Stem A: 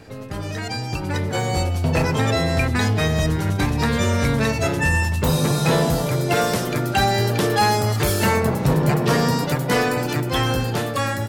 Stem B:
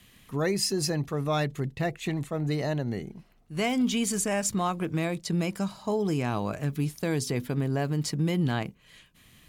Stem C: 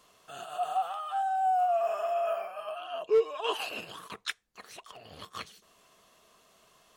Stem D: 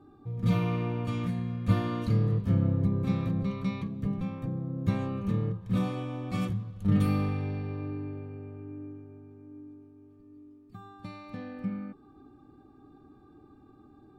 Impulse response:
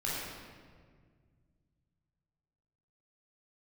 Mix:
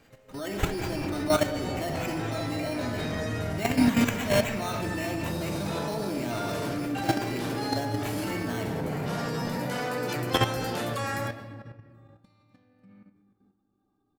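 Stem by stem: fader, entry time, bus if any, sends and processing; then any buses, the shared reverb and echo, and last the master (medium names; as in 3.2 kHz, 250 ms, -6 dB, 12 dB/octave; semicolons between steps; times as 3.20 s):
-3.5 dB, 0.00 s, send -10.5 dB, high-pass 210 Hz 6 dB/octave; auto duck -22 dB, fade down 0.25 s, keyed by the second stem
-3.5 dB, 0.00 s, send -7 dB, comb 3.2 ms, depth 94%; sample-and-hold 9×
-14.5 dB, 0.55 s, no send, none
-18.0 dB, 1.20 s, send -12.5 dB, tone controls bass -3 dB, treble +10 dB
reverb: on, RT60 1.8 s, pre-delay 16 ms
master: level held to a coarse grid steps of 11 dB; flange 1.3 Hz, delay 3.2 ms, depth 9.1 ms, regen +87%; level rider gain up to 7 dB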